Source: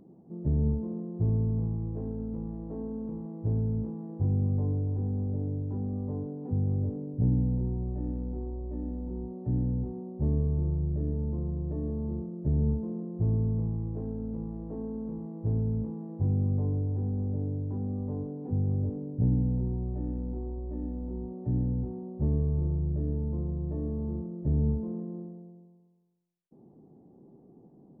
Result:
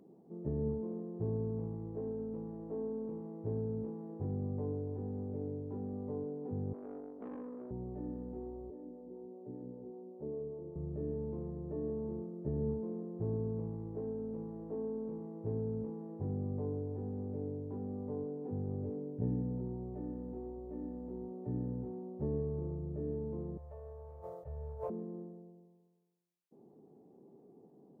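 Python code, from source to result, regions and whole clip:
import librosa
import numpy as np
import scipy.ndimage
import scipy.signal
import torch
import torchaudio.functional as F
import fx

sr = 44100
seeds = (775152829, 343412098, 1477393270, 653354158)

y = fx.chain(x, sr, fx.steep_highpass(hz=220.0, slope=72),
    fx.tube_stage(drive_db=36.0, bias=0.75), at=(6.73, 7.71))
y = fx.chain(y, sr, fx.bandpass_q(hz=480.0, q=1.1),
    fx.harmonic_tremolo(hz=5.1, depth_pct=50, crossover_hz=420.0), at=(8.7, 10.76))
y = fx.chain(y, sr, fx.cheby1_bandstop(low_hz=110.0, high_hz=550.0, order=3),
    fx.sustainer(db_per_s=48.0), at=(23.57, 24.9))
y = fx.highpass(y, sr, hz=320.0, slope=6)
y = fx.peak_eq(y, sr, hz=430.0, db=6.5, octaves=0.23)
y = y * librosa.db_to_amplitude(-2.0)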